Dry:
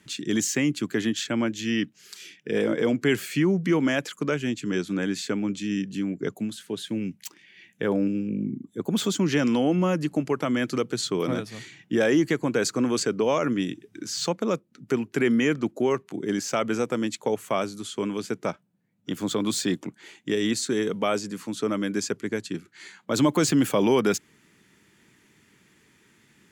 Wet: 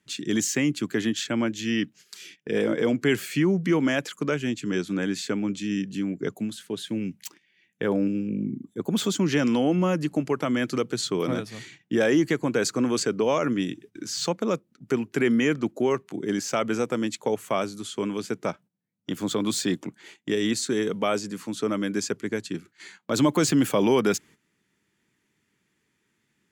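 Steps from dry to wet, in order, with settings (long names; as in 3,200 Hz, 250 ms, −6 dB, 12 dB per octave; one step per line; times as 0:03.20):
noise gate −47 dBFS, range −13 dB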